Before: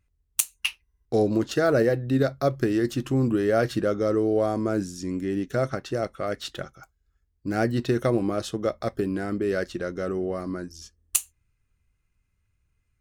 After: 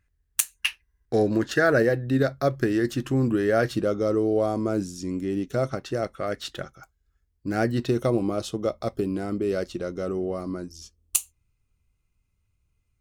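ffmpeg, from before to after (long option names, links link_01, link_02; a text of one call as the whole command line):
ffmpeg -i in.wav -af "asetnsamples=nb_out_samples=441:pad=0,asendcmd='1.78 equalizer g 4;3.69 equalizer g -7.5;5.84 equalizer g 0.5;7.89 equalizer g -11',equalizer=frequency=1700:width_type=o:width=0.39:gain=12" out.wav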